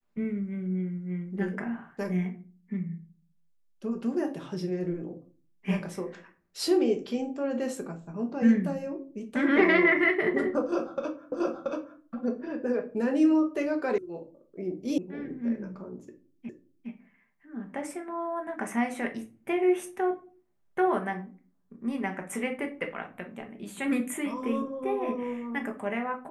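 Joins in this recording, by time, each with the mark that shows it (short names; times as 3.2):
11.32 repeat of the last 0.68 s
13.98 sound cut off
14.98 sound cut off
16.49 repeat of the last 0.41 s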